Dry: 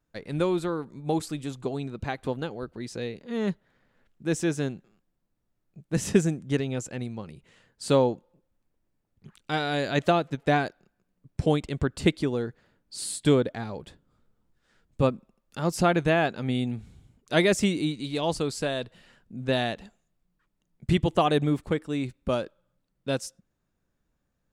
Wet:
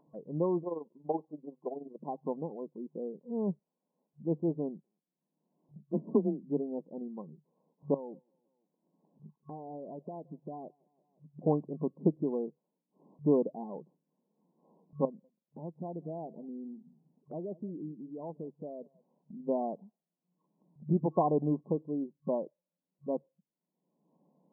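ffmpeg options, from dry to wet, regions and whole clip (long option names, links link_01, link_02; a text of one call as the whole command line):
ffmpeg -i in.wav -filter_complex "[0:a]asettb=1/sr,asplit=3[link_01][link_02][link_03];[link_01]atrim=end=0.634[link_04];[link_02]atrim=start=0.63:end=2.02,asetpts=PTS-STARTPTS,afade=type=in:duration=0.004:curve=qsin,afade=type=out:start_time=1.386:duration=0.004:curve=qsin,equalizer=frequency=550:width_type=o:width=1.2:gain=6.5,tremolo=f=21:d=0.71,highpass=frequency=430:poles=1[link_05];[link_03]atrim=start=2.016[link_06];[link_04][link_05]acrossfade=duration=0.004:curve1=hsin:curve2=qsin[link_07];[link_07][link_06]acrossfade=duration=0.004:curve1=qsin:curve2=hsin,asettb=1/sr,asplit=3[link_08][link_09][link_10];[link_08]atrim=end=5.824[link_11];[link_09]atrim=start=5.82:end=6.43,asetpts=PTS-STARTPTS,afade=type=in:duration=0.004:curve=qsin,afade=type=out:start_time=0.606:duration=0.004:curve=qsin,aecho=1:1:3.2:0.31,atrim=end_sample=26901,asoftclip=type=hard:threshold=-13.5dB,afreqshift=25[link_12];[link_10]atrim=start=6.426[link_13];[link_11][link_12]acrossfade=duration=0.004:curve1=hsin:curve2=qsin[link_14];[link_14][link_13]acrossfade=duration=0.004:curve1=qsin:curve2=hsin,asettb=1/sr,asplit=3[link_15][link_16][link_17];[link_15]atrim=end=7.944[link_18];[link_16]atrim=start=7.94:end=11.42,asetpts=PTS-STARTPTS,afade=type=in:duration=0.004:curve=qsin,afade=type=out:start_time=3.476:duration=0.004:curve=qsin,acompressor=threshold=-32dB:ratio=20:attack=3.2:release=140:knee=1:detection=peak,aecho=1:1:171|342|513:0.1|0.043|0.0185,atrim=end_sample=153468[link_19];[link_17]atrim=start=11.416[link_20];[link_18][link_19]acrossfade=duration=0.004:curve1=hsin:curve2=qsin[link_21];[link_21][link_20]acrossfade=duration=0.004:curve1=qsin:curve2=hsin,asettb=1/sr,asplit=3[link_22][link_23][link_24];[link_22]atrim=end=15.054[link_25];[link_23]atrim=start=15.05:end=19.4,asetpts=PTS-STARTPTS,afade=type=in:duration=0.004:curve=qsin,afade=type=out:start_time=4.346:duration=0.004:curve=qsin,equalizer=frequency=1400:width=3:gain=-14.5,acompressor=threshold=-36dB:ratio=2.5:attack=3.2:release=140:knee=1:detection=peak,aecho=1:1:191:0.106,atrim=end_sample=191835[link_26];[link_24]atrim=start=19.396[link_27];[link_25][link_26]acrossfade=duration=0.004:curve1=hsin:curve2=qsin[link_28];[link_28][link_27]acrossfade=duration=0.004:curve1=qsin:curve2=hsin,afftdn=noise_reduction=14:noise_floor=-39,afftfilt=real='re*between(b*sr/4096,140,1100)':imag='im*between(b*sr/4096,140,1100)':win_size=4096:overlap=0.75,acompressor=mode=upward:threshold=-40dB:ratio=2.5,volume=-4.5dB" out.wav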